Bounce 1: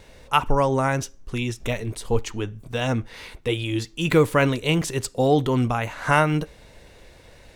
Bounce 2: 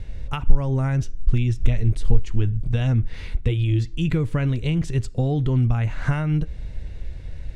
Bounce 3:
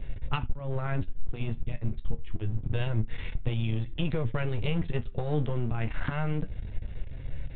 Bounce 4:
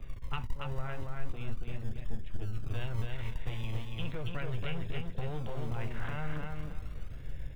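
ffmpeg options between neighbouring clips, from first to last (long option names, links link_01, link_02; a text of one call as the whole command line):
ffmpeg -i in.wav -af "equalizer=frequency=250:width_type=o:width=1:gain=-4,equalizer=frequency=500:width_type=o:width=1:gain=-6,equalizer=frequency=1000:width_type=o:width=1:gain=-8,equalizer=frequency=8000:width_type=o:width=1:gain=3,acompressor=threshold=-29dB:ratio=6,aemphasis=mode=reproduction:type=riaa,volume=3dB" out.wav
ffmpeg -i in.wav -af "acompressor=threshold=-20dB:ratio=12,aresample=8000,aeval=exprs='clip(val(0),-1,0.0168)':channel_layout=same,aresample=44100,flanger=delay=7.3:depth=6.2:regen=57:speed=0.27:shape=sinusoidal,volume=3.5dB" out.wav
ffmpeg -i in.wav -filter_complex "[0:a]acrossover=split=100|670[link_01][link_02][link_03];[link_01]acrusher=samples=36:mix=1:aa=0.000001:lfo=1:lforange=21.6:lforate=0.37[link_04];[link_02]asoftclip=type=hard:threshold=-34.5dB[link_05];[link_04][link_05][link_03]amix=inputs=3:normalize=0,aecho=1:1:280|560|840|1120:0.668|0.167|0.0418|0.0104,volume=-6dB" out.wav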